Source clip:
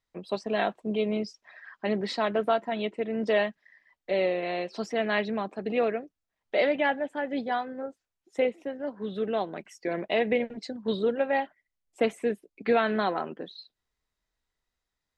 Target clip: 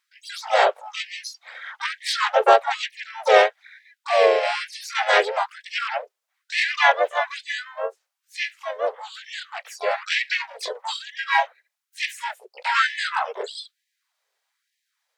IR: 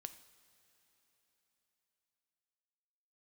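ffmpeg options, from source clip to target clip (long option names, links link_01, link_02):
-filter_complex "[0:a]asplit=4[link_01][link_02][link_03][link_04];[link_02]asetrate=37084,aresample=44100,atempo=1.18921,volume=-2dB[link_05];[link_03]asetrate=52444,aresample=44100,atempo=0.840896,volume=-2dB[link_06];[link_04]asetrate=88200,aresample=44100,atempo=0.5,volume=-9dB[link_07];[link_01][link_05][link_06][link_07]amix=inputs=4:normalize=0,afftfilt=real='re*gte(b*sr/1024,370*pow(1700/370,0.5+0.5*sin(2*PI*1.1*pts/sr)))':imag='im*gte(b*sr/1024,370*pow(1700/370,0.5+0.5*sin(2*PI*1.1*pts/sr)))':win_size=1024:overlap=0.75,volume=7dB"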